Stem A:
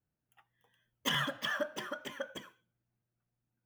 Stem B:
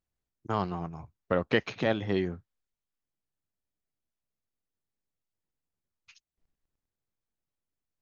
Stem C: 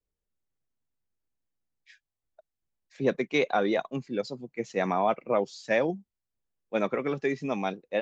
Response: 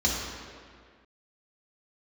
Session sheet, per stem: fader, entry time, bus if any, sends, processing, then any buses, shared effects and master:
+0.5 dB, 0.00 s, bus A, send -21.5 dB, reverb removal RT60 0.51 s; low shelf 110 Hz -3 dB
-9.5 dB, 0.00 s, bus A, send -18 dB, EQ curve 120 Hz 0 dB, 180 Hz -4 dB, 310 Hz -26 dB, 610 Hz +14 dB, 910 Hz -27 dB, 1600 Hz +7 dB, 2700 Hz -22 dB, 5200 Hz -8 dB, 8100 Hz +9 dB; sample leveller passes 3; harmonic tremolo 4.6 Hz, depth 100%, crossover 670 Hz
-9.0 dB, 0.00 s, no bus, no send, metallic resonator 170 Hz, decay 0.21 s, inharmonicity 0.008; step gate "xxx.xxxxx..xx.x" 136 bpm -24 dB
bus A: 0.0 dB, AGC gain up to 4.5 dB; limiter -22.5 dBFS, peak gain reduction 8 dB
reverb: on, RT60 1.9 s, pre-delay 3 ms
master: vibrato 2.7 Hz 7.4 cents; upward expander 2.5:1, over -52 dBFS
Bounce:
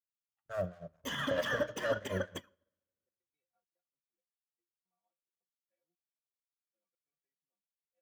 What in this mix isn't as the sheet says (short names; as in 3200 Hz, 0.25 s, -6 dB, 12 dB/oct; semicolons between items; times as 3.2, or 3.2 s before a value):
stem A +0.5 dB -> +7.5 dB; stem C -9.0 dB -> -19.0 dB